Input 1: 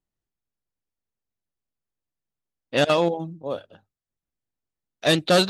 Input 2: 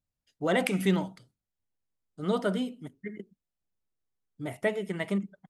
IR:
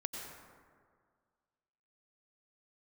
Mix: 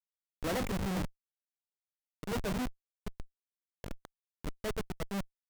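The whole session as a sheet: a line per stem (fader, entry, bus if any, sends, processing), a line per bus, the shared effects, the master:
-10.5 dB, 0.30 s, send -17 dB, echo send -14.5 dB, level flattener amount 70%; auto duck -20 dB, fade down 0.25 s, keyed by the second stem
+3.0 dB, 0.00 s, send -20.5 dB, no echo send, treble shelf 7.4 kHz -2.5 dB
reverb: on, RT60 1.9 s, pre-delay 83 ms
echo: feedback delay 76 ms, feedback 42%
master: treble shelf 5.2 kHz -8 dB; Schmitt trigger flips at -25 dBFS; peak limiter -31 dBFS, peak gain reduction 7.5 dB

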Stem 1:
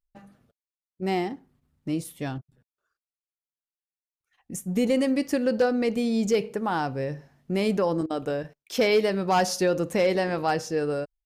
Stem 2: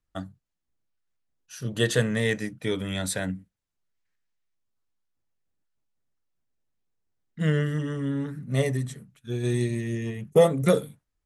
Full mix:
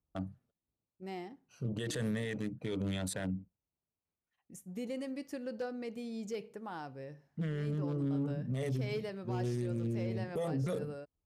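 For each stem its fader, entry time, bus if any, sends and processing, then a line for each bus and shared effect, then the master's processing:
-16.5 dB, 0.00 s, no send, none
0.0 dB, 0.00 s, no send, local Wiener filter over 25 samples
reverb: none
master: high-pass 51 Hz; peak limiter -28 dBFS, peak gain reduction 21 dB

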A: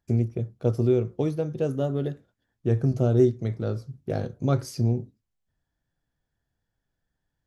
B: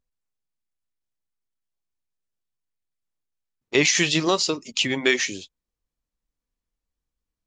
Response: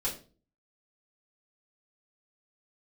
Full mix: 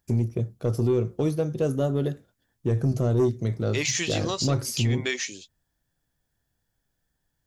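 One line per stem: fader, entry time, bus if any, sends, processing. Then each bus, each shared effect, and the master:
+2.5 dB, 0.00 s, no send, none
-9.0 dB, 0.00 s, no send, none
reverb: none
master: treble shelf 6 kHz +10.5 dB; saturation -11.5 dBFS, distortion -17 dB; peak limiter -15.5 dBFS, peak gain reduction 3.5 dB

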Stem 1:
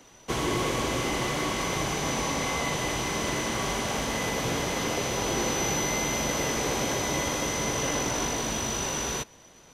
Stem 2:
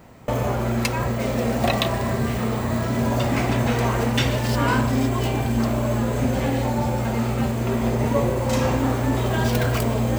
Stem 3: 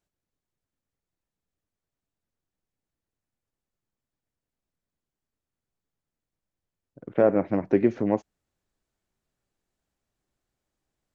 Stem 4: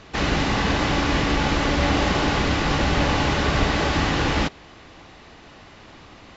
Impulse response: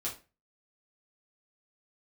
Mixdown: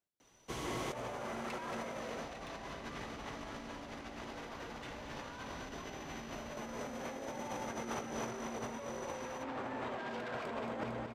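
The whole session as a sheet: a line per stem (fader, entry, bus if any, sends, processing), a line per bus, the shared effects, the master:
-18.5 dB, 0.20 s, no bus, no send, no echo send, none
+2.0 dB, 0.65 s, bus A, no send, echo send -17.5 dB, low-pass 1.5 kHz 12 dB/octave; tilt EQ +3.5 dB/octave; saturation -27 dBFS, distortion -11 dB
-13.5 dB, 0.00 s, bus A, no send, no echo send, none
-13.5 dB, 1.85 s, bus A, no send, echo send -7.5 dB, none
bus A: 0.0 dB, high-pass 200 Hz 6 dB/octave; compression 3:1, threshold -39 dBFS, peak gain reduction 10.5 dB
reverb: none
echo: feedback delay 227 ms, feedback 50%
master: compressor with a negative ratio -41 dBFS, ratio -0.5

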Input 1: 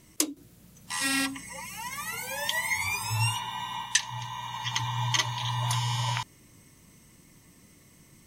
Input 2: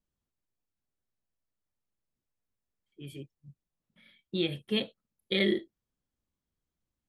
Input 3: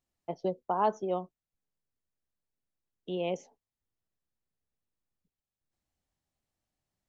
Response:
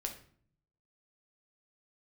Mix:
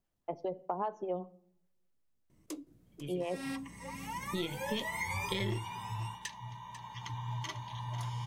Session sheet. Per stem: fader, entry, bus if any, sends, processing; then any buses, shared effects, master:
3.25 s -16.5 dB -> 4.04 s -4.5 dB -> 5.50 s -4.5 dB -> 6.06 s -13.5 dB, 2.30 s, send -16.5 dB, echo send -11.5 dB, tilt shelf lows +7 dB, about 1.3 kHz; one-sided clip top -18 dBFS, bottom -17.5 dBFS
+0.5 dB, 0.00 s, no send, no echo send, partial rectifier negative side -3 dB
+0.5 dB, 0.00 s, send -12 dB, no echo send, tone controls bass +5 dB, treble -9 dB; lamp-driven phase shifter 5 Hz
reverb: on, RT60 0.55 s, pre-delay 6 ms
echo: delay 495 ms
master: compression 5:1, threshold -32 dBFS, peak gain reduction 11.5 dB

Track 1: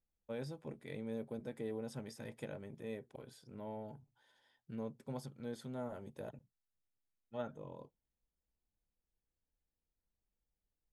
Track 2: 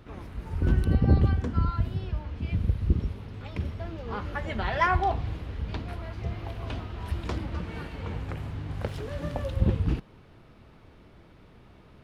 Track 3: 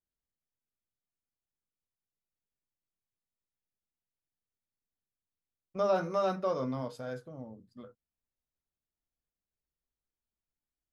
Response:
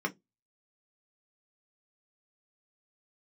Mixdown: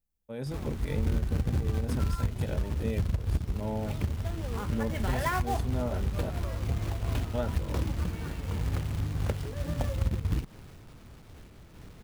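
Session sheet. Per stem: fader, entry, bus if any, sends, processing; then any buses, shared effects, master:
-2.0 dB, 0.00 s, no send, treble shelf 10 kHz +10 dB; level rider gain up to 11 dB
+0.5 dB, 0.45 s, no send, companded quantiser 4-bit; random flutter of the level, depth 60%
-15.5 dB, 0.00 s, no send, none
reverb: none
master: bass shelf 230 Hz +8 dB; compression 10:1, threshold -24 dBFS, peak gain reduction 14 dB

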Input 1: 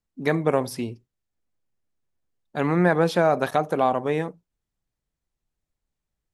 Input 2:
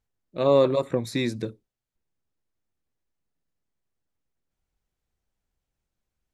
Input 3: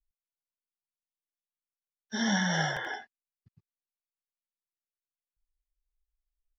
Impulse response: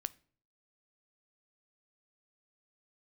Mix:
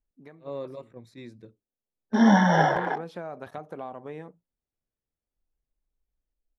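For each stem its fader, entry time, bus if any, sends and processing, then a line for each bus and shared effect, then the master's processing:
-10.0 dB, 0.00 s, no send, compression 2.5:1, threshold -26 dBFS, peak gain reduction 8.5 dB; auto duck -17 dB, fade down 0.45 s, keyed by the second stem
-16.5 dB, 0.00 s, no send, attacks held to a fixed rise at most 380 dB/s
+1.5 dB, 0.00 s, no send, local Wiener filter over 41 samples; ten-band graphic EQ 250 Hz +11 dB, 500 Hz +8 dB, 1 kHz +12 dB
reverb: none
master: treble shelf 3.9 kHz -9 dB

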